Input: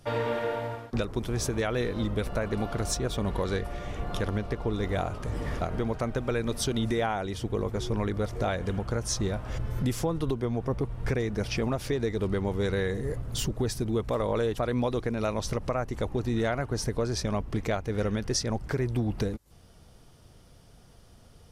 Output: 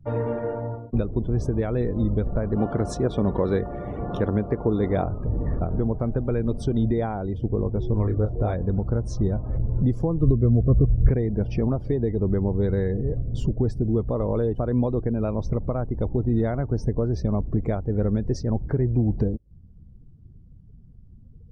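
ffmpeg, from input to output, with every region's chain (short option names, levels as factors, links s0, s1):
-filter_complex "[0:a]asettb=1/sr,asplit=3[s0][s1][s2];[s0]atrim=end=2.564[s3];[s1]atrim=start=2.56:end=5.05,asetpts=PTS-STARTPTS,afade=t=in:d=0.004:c=qsin,afade=t=out:st=2.486:d=0.004:c=qsin,highpass=f=250:p=1,acontrast=48[s4];[s2]atrim=start=5.046[s5];[s3][s4]acrossfade=d=0.004:c1=hsin:c2=qsin[s6];[s6][s5]acrossfade=d=0.004:c1=qsin:c2=hsin,asettb=1/sr,asplit=3[s7][s8][s9];[s7]atrim=end=7.934[s10];[s8]atrim=start=7.93:end=8.54,asetpts=PTS-STARTPTS,afade=t=in:d=0.004:c=qsin,afade=t=out:st=0.606:d=0.004:c=qsin,equalizer=f=200:t=o:w=0.35:g=-6.5,asplit=2[s11][s12];[s12]adelay=28,volume=0.501[s13];[s11][s13]amix=inputs=2:normalize=0,atrim=end_sample=26901[s14];[s9]atrim=start=8.536[s15];[s10][s14]acrossfade=d=0.004:c1=hsin:c2=qsin[s16];[s16][s15]acrossfade=d=0.004:c1=qsin:c2=hsin,asettb=1/sr,asplit=3[s17][s18][s19];[s17]atrim=end=10.214[s20];[s18]atrim=start=10.21:end=11.09,asetpts=PTS-STARTPTS,afade=t=in:d=0.004:c=qsin,afade=t=out:st=0.876:d=0.004:c=qsin,asuperstop=centerf=860:order=20:qfactor=2.6,equalizer=f=61:t=o:w=2.5:g=11[s21];[s19]atrim=start=11.086[s22];[s20][s21]acrossfade=d=0.004:c1=hsin:c2=qsin[s23];[s23][s22]acrossfade=d=0.004:c1=qsin:c2=hsin,tiltshelf=f=680:g=8,afftdn=nr=21:nf=-44,highshelf=f=3600:g=-7"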